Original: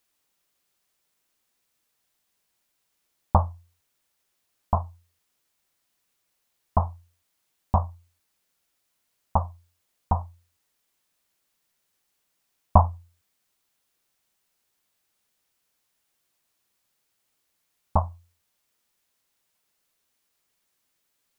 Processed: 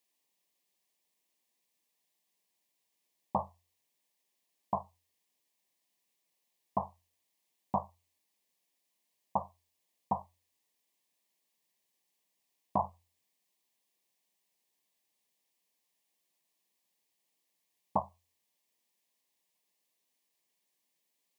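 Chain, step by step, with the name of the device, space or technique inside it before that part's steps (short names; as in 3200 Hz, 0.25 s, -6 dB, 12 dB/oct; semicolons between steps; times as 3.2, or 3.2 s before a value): PA system with an anti-feedback notch (HPF 150 Hz 24 dB/oct; Butterworth band-stop 1400 Hz, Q 2.5; limiter -11.5 dBFS, peak gain reduction 8.5 dB); gain -5.5 dB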